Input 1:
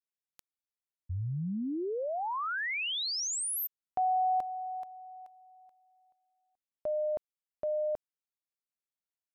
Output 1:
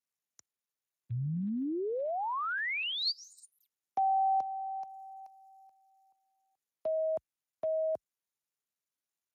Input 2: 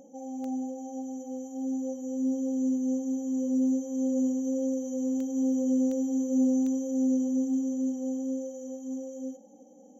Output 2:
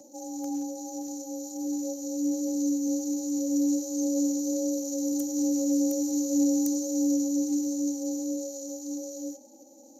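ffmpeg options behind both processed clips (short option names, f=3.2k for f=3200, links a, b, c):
-af "afreqshift=28,aexciter=amount=14.1:drive=3.2:freq=5.4k" -ar 32000 -c:a libspeex -b:a 28k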